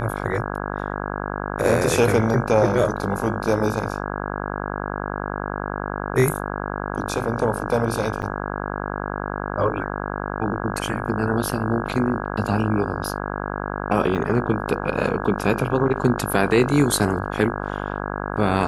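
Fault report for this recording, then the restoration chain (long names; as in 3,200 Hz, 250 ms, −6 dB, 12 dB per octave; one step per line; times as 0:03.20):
mains buzz 50 Hz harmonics 33 −28 dBFS
0:08.22–0:08.23: drop-out 7.6 ms
0:14.15: drop-out 3.6 ms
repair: hum removal 50 Hz, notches 33
repair the gap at 0:08.22, 7.6 ms
repair the gap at 0:14.15, 3.6 ms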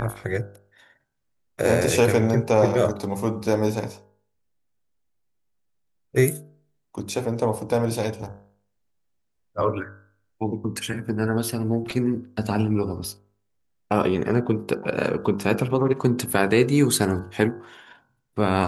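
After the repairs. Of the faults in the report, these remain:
none of them is left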